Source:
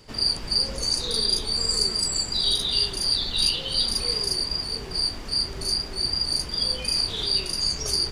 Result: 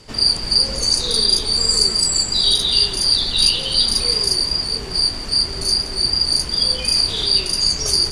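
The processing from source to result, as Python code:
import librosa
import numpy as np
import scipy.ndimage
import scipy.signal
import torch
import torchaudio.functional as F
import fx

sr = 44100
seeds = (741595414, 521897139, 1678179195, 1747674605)

p1 = scipy.signal.sosfilt(scipy.signal.butter(2, 9700.0, 'lowpass', fs=sr, output='sos'), x)
p2 = fx.high_shelf(p1, sr, hz=7600.0, db=8.0)
p3 = p2 + fx.echo_single(p2, sr, ms=170, db=-15.0, dry=0)
y = F.gain(torch.from_numpy(p3), 5.5).numpy()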